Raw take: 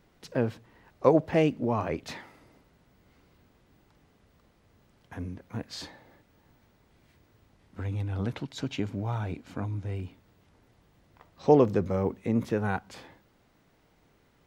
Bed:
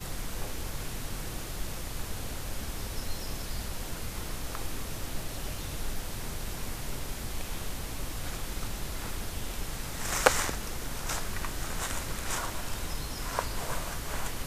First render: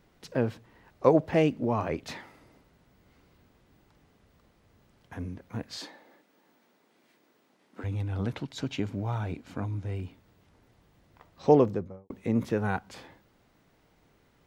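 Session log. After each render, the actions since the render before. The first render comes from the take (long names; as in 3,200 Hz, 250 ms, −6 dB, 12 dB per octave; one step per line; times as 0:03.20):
0:05.77–0:07.84: high-pass filter 220 Hz 24 dB per octave
0:11.49–0:12.10: fade out and dull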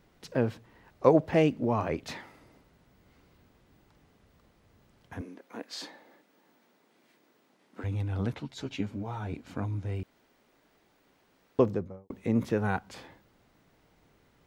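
0:05.21–0:05.82: high-pass filter 270 Hz 24 dB per octave
0:08.34–0:09.33: string-ensemble chorus
0:10.03–0:11.59: fill with room tone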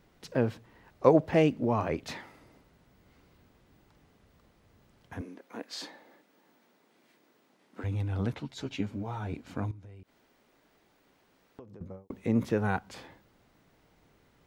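0:09.71–0:11.81: downward compressor 8 to 1, threshold −46 dBFS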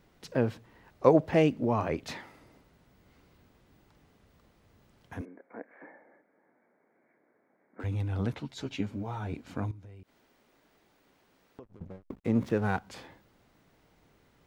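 0:05.25–0:07.80: Chebyshev low-pass with heavy ripple 2,300 Hz, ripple 6 dB
0:11.63–0:12.79: slack as between gear wheels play −43.5 dBFS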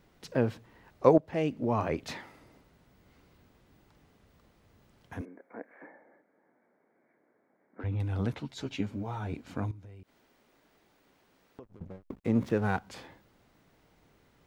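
0:01.18–0:01.79: fade in, from −16.5 dB
0:05.87–0:08.00: high-frequency loss of the air 230 metres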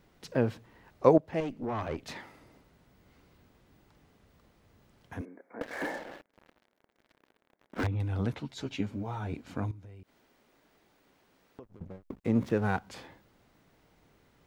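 0:01.40–0:02.16: tube saturation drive 27 dB, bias 0.6
0:05.61–0:07.87: leveller curve on the samples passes 5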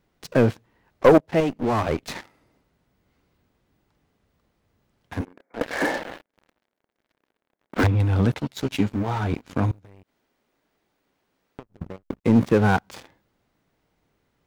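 leveller curve on the samples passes 3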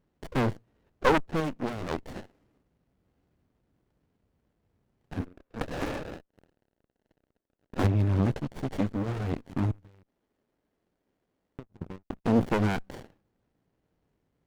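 tube saturation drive 12 dB, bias 0.65
windowed peak hold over 33 samples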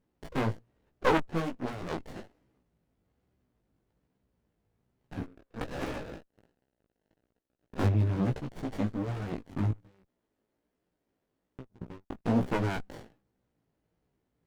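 chorus effect 1.2 Hz, delay 15.5 ms, depth 3.4 ms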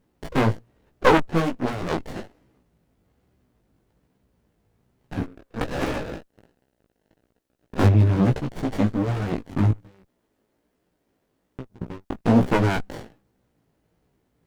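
level +9.5 dB
brickwall limiter −3 dBFS, peak gain reduction 2 dB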